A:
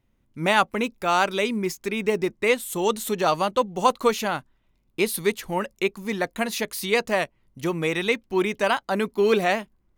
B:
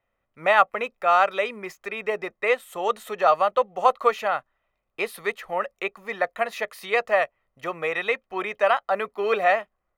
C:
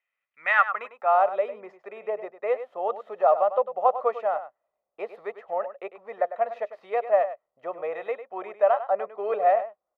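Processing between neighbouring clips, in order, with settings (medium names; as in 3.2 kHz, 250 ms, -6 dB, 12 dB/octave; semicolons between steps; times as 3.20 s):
three-band isolator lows -20 dB, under 470 Hz, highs -18 dB, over 2.5 kHz; comb 1.6 ms, depth 45%; trim +3 dB
median filter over 5 samples; delay 100 ms -12 dB; band-pass sweep 2.4 kHz -> 640 Hz, 0.31–1.24 s; trim +2 dB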